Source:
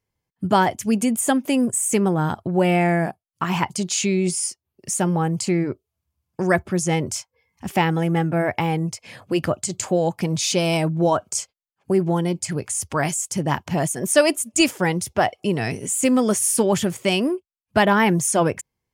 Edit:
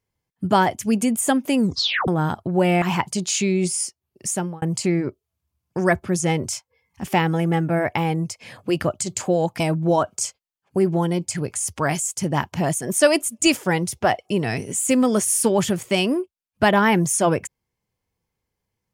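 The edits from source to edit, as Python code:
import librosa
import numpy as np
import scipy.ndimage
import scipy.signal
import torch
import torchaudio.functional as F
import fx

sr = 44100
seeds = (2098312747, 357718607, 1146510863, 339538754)

y = fx.edit(x, sr, fx.tape_stop(start_s=1.57, length_s=0.51),
    fx.cut(start_s=2.82, length_s=0.63),
    fx.fade_out_span(start_s=4.91, length_s=0.34),
    fx.cut(start_s=10.23, length_s=0.51), tone=tone)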